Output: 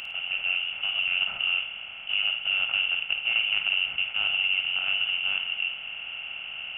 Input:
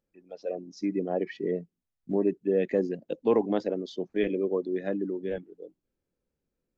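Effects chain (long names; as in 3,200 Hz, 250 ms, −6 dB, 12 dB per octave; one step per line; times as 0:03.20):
compressor on every frequency bin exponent 0.2
voice inversion scrambler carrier 3,200 Hz
flutter between parallel walls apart 9.1 metres, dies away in 0.36 s
level −7 dB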